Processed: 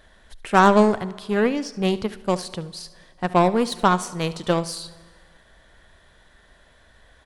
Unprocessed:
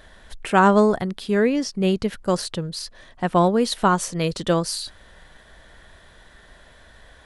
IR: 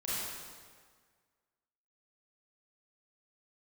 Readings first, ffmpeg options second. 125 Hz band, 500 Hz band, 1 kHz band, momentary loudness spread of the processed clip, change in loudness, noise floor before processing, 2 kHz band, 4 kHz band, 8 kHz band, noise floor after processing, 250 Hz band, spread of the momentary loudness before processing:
−1.5 dB, −0.5 dB, +1.0 dB, 17 LU, 0.0 dB, −50 dBFS, +0.5 dB, −2.0 dB, −4.0 dB, −55 dBFS, −1.0 dB, 13 LU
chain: -filter_complex "[0:a]aeval=exprs='0.668*(cos(1*acos(clip(val(0)/0.668,-1,1)))-cos(1*PI/2))+0.0473*(cos(3*acos(clip(val(0)/0.668,-1,1)))-cos(3*PI/2))+0.0119*(cos(5*acos(clip(val(0)/0.668,-1,1)))-cos(5*PI/2))+0.0422*(cos(7*acos(clip(val(0)/0.668,-1,1)))-cos(7*PI/2))':channel_layout=same,aecho=1:1:72:0.133,asplit=2[link_01][link_02];[1:a]atrim=start_sample=2205[link_03];[link_02][link_03]afir=irnorm=-1:irlink=0,volume=-22.5dB[link_04];[link_01][link_04]amix=inputs=2:normalize=0,volume=1.5dB"

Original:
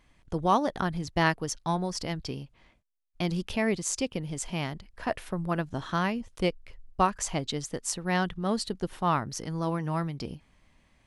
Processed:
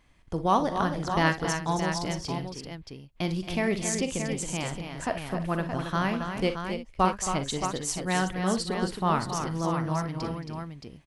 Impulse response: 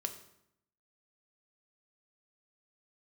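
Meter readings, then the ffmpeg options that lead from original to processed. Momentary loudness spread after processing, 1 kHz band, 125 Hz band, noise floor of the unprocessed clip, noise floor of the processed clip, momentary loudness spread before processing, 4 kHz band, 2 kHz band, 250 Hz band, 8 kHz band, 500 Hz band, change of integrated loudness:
9 LU, +2.0 dB, +1.5 dB, −65 dBFS, −54 dBFS, 9 LU, +1.5 dB, +2.0 dB, +1.5 dB, +1.5 dB, +1.5 dB, +1.5 dB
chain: -af "aecho=1:1:43|58|224|272|330|622:0.251|0.2|0.126|0.422|0.133|0.422"

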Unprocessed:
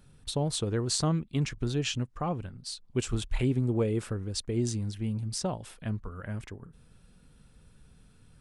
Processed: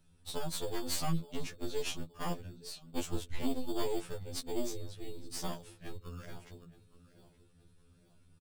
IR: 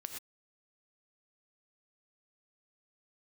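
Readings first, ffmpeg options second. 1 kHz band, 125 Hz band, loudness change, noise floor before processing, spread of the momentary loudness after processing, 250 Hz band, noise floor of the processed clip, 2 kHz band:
−4.0 dB, −13.5 dB, −8.0 dB, −59 dBFS, 12 LU, −8.5 dB, −65 dBFS, −5.5 dB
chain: -filter_complex "[0:a]asplit=2[link_01][link_02];[link_02]adelay=871,lowpass=frequency=2200:poles=1,volume=-16.5dB,asplit=2[link_03][link_04];[link_04]adelay=871,lowpass=frequency=2200:poles=1,volume=0.44,asplit=2[link_05][link_06];[link_06]adelay=871,lowpass=frequency=2200:poles=1,volume=0.44,asplit=2[link_07][link_08];[link_08]adelay=871,lowpass=frequency=2200:poles=1,volume=0.44[link_09];[link_01][link_03][link_05][link_07][link_09]amix=inputs=5:normalize=0,aeval=exprs='0.224*(cos(1*acos(clip(val(0)/0.224,-1,1)))-cos(1*PI/2))+0.0562*(cos(6*acos(clip(val(0)/0.224,-1,1)))-cos(6*PI/2))':channel_layout=same,acrossover=split=190|1500[link_10][link_11][link_12];[link_11]acrusher=samples=11:mix=1:aa=0.000001[link_13];[link_10][link_13][link_12]amix=inputs=3:normalize=0,afftfilt=real='re*2*eq(mod(b,4),0)':imag='im*2*eq(mod(b,4),0)':win_size=2048:overlap=0.75,volume=-5.5dB"

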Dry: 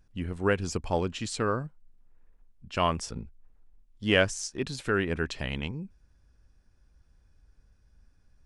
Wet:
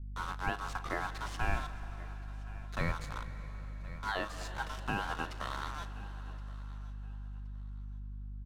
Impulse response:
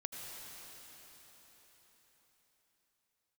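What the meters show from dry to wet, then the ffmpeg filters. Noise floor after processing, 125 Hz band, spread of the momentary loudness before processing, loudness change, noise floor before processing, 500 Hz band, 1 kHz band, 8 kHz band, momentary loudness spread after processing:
−43 dBFS, −6.0 dB, 13 LU, −10.0 dB, −64 dBFS, −14.5 dB, −3.5 dB, −13.5 dB, 11 LU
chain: -filter_complex "[0:a]aeval=exprs='val(0)*sin(2*PI*1200*n/s)':channel_layout=same,acrusher=bits=5:mix=0:aa=0.000001,aecho=1:1:1071|2142:0.0891|0.0214,asplit=2[link_01][link_02];[1:a]atrim=start_sample=2205,adelay=38[link_03];[link_02][link_03]afir=irnorm=-1:irlink=0,volume=-11dB[link_04];[link_01][link_04]amix=inputs=2:normalize=0,aeval=exprs='val(0)+0.00316*(sin(2*PI*50*n/s)+sin(2*PI*2*50*n/s)/2+sin(2*PI*3*50*n/s)/3+sin(2*PI*4*50*n/s)/4+sin(2*PI*5*50*n/s)/5)':channel_layout=same,alimiter=limit=-18.5dB:level=0:latency=1:release=207,aemphasis=mode=reproduction:type=bsi,volume=-4dB"

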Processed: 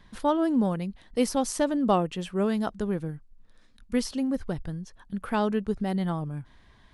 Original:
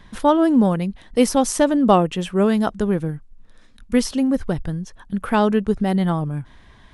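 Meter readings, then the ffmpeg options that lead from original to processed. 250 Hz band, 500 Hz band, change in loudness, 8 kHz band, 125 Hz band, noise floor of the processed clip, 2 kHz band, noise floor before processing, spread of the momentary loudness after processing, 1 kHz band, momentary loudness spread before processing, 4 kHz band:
−8.5 dB, −8.5 dB, −8.5 dB, −8.5 dB, −8.5 dB, −57 dBFS, −8.5 dB, −49 dBFS, 13 LU, −8.5 dB, 13 LU, −7.5 dB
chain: -af "equalizer=frequency=4500:width_type=o:width=0.28:gain=4,volume=-8.5dB"

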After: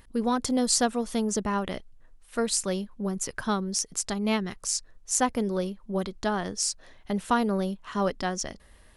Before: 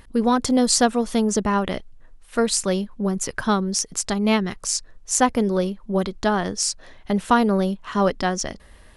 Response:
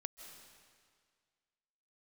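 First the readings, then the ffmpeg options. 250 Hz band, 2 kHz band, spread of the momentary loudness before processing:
−7.0 dB, −6.5 dB, 8 LU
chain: -af "highshelf=frequency=6800:gain=5,volume=-7dB"

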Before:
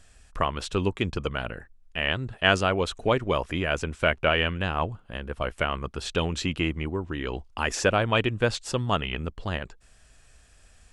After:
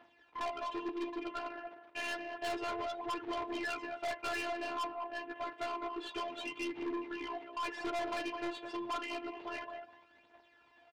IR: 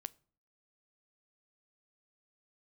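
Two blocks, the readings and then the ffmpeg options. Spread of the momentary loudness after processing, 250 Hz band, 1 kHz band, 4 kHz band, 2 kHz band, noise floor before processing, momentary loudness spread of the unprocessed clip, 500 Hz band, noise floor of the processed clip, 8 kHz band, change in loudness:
6 LU, −10.5 dB, −8.0 dB, −14.5 dB, −13.5 dB, −57 dBFS, 10 LU, −13.0 dB, −66 dBFS, −15.5 dB, −12.5 dB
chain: -filter_complex "[0:a]asplit=2[link_01][link_02];[link_02]adelay=206,lowpass=frequency=1900:poles=1,volume=-11dB,asplit=2[link_03][link_04];[link_04]adelay=206,lowpass=frequency=1900:poles=1,volume=0.25,asplit=2[link_05][link_06];[link_06]adelay=206,lowpass=frequency=1900:poles=1,volume=0.25[link_07];[link_01][link_03][link_05][link_07]amix=inputs=4:normalize=0[link_08];[1:a]atrim=start_sample=2205[link_09];[link_08][link_09]afir=irnorm=-1:irlink=0,asplit=2[link_10][link_11];[link_11]acompressor=threshold=-35dB:ratio=6,volume=-3dB[link_12];[link_10][link_12]amix=inputs=2:normalize=0,aphaser=in_gain=1:out_gain=1:delay=4.6:decay=0.69:speed=0.29:type=triangular,tiltshelf=frequency=700:gain=-4,flanger=delay=8.3:depth=8.3:regen=-20:speed=0.91:shape=triangular,afftfilt=real='hypot(re,im)*cos(PI*b)':imag='0':win_size=512:overlap=0.75,aecho=1:1:6.9:0.3,areverse,acompressor=mode=upward:threshold=-47dB:ratio=2.5,areverse,acrusher=bits=4:mode=log:mix=0:aa=0.000001,highpass=210,equalizer=frequency=310:width_type=q:width=4:gain=8,equalizer=frequency=450:width_type=q:width=4:gain=7,equalizer=frequency=650:width_type=q:width=4:gain=6,equalizer=frequency=930:width_type=q:width=4:gain=10,lowpass=frequency=3300:width=0.5412,lowpass=frequency=3300:width=1.3066,aeval=exprs='(tanh(35.5*val(0)+0.1)-tanh(0.1))/35.5':channel_layout=same,volume=-3dB"

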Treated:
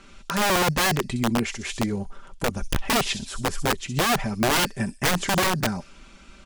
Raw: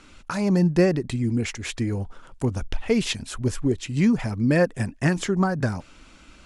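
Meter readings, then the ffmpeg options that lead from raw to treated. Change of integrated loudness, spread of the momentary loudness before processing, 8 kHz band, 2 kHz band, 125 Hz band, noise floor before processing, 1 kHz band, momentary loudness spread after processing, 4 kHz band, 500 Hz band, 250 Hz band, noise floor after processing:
0.0 dB, 9 LU, +8.0 dB, +5.5 dB, −5.0 dB, −50 dBFS, +9.0 dB, 9 LU, +8.5 dB, −2.5 dB, −5.0 dB, −49 dBFS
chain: -filter_complex "[0:a]highshelf=frequency=5100:gain=-3,aecho=1:1:5.1:0.54,acrossover=split=3600[link_01][link_02];[link_01]aeval=exprs='(mod(6.31*val(0)+1,2)-1)/6.31':channel_layout=same[link_03];[link_02]aecho=1:1:64|128|192|256|320:0.531|0.223|0.0936|0.0393|0.0165[link_04];[link_03][link_04]amix=inputs=2:normalize=0"

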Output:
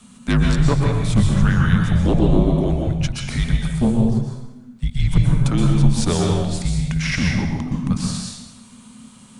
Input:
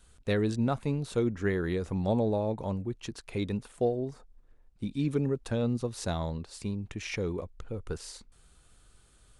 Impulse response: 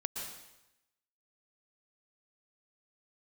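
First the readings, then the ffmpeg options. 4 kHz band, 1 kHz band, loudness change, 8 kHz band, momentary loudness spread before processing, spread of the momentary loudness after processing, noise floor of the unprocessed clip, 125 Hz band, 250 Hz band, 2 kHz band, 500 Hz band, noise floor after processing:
+14.5 dB, +9.5 dB, +12.5 dB, +15.0 dB, 11 LU, 8 LU, −61 dBFS, +16.5 dB, +12.5 dB, +13.0 dB, +4.5 dB, −45 dBFS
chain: -filter_complex "[0:a]afreqshift=-260,aeval=exprs='0.211*sin(PI/2*2*val(0)/0.211)':channel_layout=same[link_01];[1:a]atrim=start_sample=2205,asetrate=42777,aresample=44100[link_02];[link_01][link_02]afir=irnorm=-1:irlink=0,volume=4dB"

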